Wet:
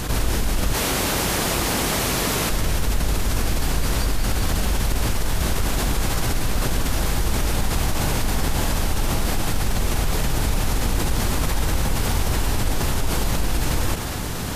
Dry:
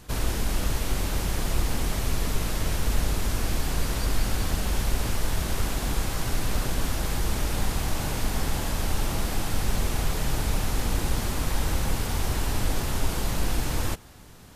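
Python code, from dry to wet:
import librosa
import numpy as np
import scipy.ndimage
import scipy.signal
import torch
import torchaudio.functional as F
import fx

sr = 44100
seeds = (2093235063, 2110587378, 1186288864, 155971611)

y = fx.highpass(x, sr, hz=240.0, slope=6, at=(0.73, 2.5))
y = fx.quant_float(y, sr, bits=8, at=(6.87, 7.39))
y = fx.env_flatten(y, sr, amount_pct=70)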